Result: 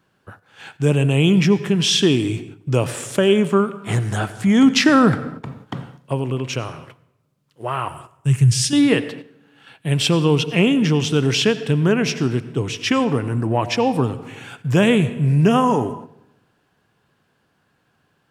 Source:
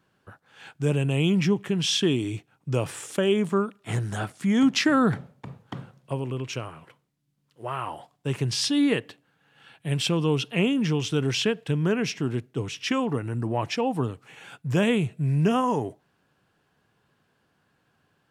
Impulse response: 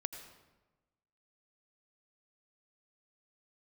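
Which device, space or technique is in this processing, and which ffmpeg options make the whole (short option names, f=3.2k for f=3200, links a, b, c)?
keyed gated reverb: -filter_complex "[0:a]asettb=1/sr,asplit=3[a][b][c];[a]atrim=end=7.884[d];[b]atrim=start=7.88:end=8.73,asetpts=PTS-STARTPTS,afade=t=in:d=0.004:c=qsin,afade=t=out:st=0.846:d=0.004:c=qsin,equalizer=f=125:t=o:w=1:g=10,equalizer=f=250:t=o:w=1:g=-9,equalizer=f=500:t=o:w=1:g=-11,equalizer=f=1k:t=o:w=1:g=-10,equalizer=f=4k:t=o:w=1:g=-9,equalizer=f=8k:t=o:w=1:g=7[e];[c]atrim=start=8.726[f];[d][e]acrossfade=d=0.004:c1=hsin:c2=qsin[g];[g][f]acrossfade=d=0.004:c1=qsin:c2=hsin,asplit=3[h][i][j];[1:a]atrim=start_sample=2205[k];[i][k]afir=irnorm=-1:irlink=0[l];[j]apad=whole_len=807286[m];[l][m]sidechaingate=range=-9dB:threshold=-51dB:ratio=16:detection=peak,volume=0.5dB[n];[h][n]amix=inputs=2:normalize=0,volume=1.5dB"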